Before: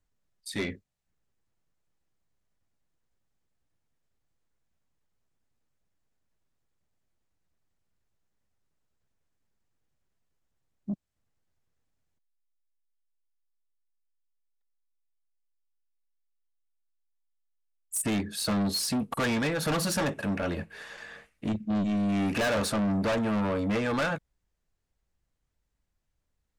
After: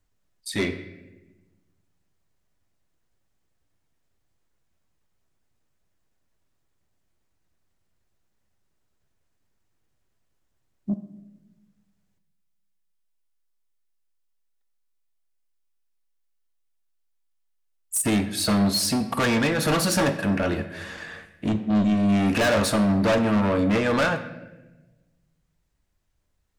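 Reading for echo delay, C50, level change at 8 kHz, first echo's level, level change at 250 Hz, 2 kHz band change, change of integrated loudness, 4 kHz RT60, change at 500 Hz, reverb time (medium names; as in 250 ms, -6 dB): no echo, 11.0 dB, +6.0 dB, no echo, +6.5 dB, +6.0 dB, +6.0 dB, 0.80 s, +6.5 dB, 1.1 s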